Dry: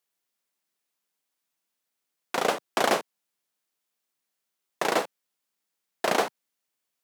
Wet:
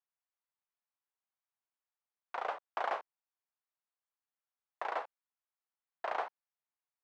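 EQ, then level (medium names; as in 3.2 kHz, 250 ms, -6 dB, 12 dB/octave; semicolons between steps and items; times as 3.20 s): ladder band-pass 1.1 kHz, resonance 25%; +1.0 dB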